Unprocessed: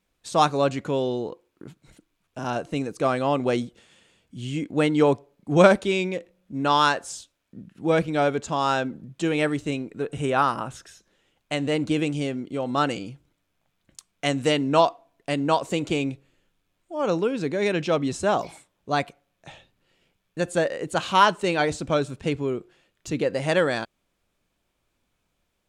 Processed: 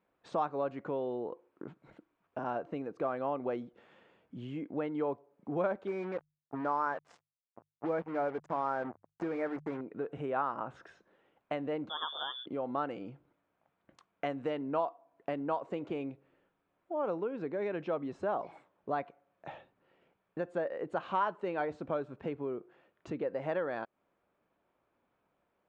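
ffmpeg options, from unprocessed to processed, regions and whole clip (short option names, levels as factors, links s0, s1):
-filter_complex "[0:a]asettb=1/sr,asplit=3[s0][s1][s2];[s0]atrim=end=5.874[s3];[s1]atrim=start=5.87:end=9.81,asetpts=PTS-STARTPTS,afade=t=in:d=0.004:c=qsin,afade=t=out:st=3.936:d=0.004:c=qsin,asuperstop=centerf=3400:order=20:qfactor=1.5,acrusher=bits=4:mix=0:aa=0.5,bandreject=f=50:t=h:w=6,bandreject=f=100:t=h:w=6,bandreject=f=150:t=h:w=6[s4];[s2]atrim=start=9.806[s5];[s3][s4]acrossfade=d=0.004:c1=hsin:c2=qsin[s6];[s6][s5]acrossfade=d=0.004:c1=qsin:c2=hsin,asettb=1/sr,asplit=3[s7][s8][s9];[s7]atrim=end=11.894[s10];[s8]atrim=start=11.89:end=12.46,asetpts=PTS-STARTPTS,afade=t=in:d=0.004:c=qsin,afade=t=out:st=0.566:d=0.004:c=qsin,asuperstop=centerf=1300:order=12:qfactor=1.3,lowpass=f=3100:t=q:w=0.5098,lowpass=f=3100:t=q:w=0.6013,lowpass=f=3100:t=q:w=0.9,lowpass=f=3100:t=q:w=2.563,afreqshift=-3700[s11];[s9]atrim=start=12.456[s12];[s10][s11]acrossfade=d=0.004:c1=hsin:c2=qsin[s13];[s13][s12]acrossfade=d=0.004:c1=qsin:c2=hsin,lowpass=1200,acompressor=threshold=0.0141:ratio=3,highpass=f=510:p=1,volume=1.78"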